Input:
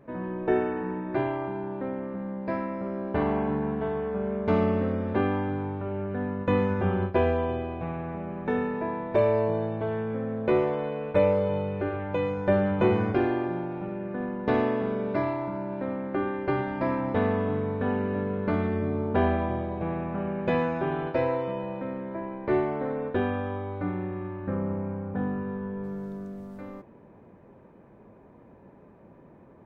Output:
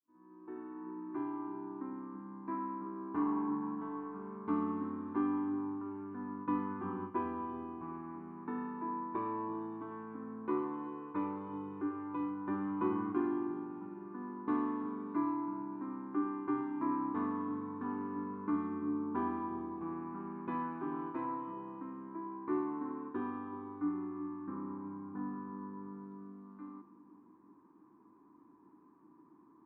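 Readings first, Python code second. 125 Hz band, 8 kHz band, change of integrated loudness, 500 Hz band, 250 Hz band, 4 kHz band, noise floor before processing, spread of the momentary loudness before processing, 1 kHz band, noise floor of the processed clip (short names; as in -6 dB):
-20.0 dB, n/a, -10.5 dB, -17.5 dB, -7.0 dB, under -20 dB, -53 dBFS, 9 LU, -7.5 dB, -62 dBFS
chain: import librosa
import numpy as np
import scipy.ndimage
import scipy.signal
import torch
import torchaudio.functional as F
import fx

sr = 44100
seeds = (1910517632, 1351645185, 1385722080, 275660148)

y = fx.fade_in_head(x, sr, length_s=1.8)
y = fx.double_bandpass(y, sr, hz=570.0, octaves=1.8)
y = fx.echo_split(y, sr, split_hz=680.0, low_ms=376, high_ms=100, feedback_pct=52, wet_db=-14.5)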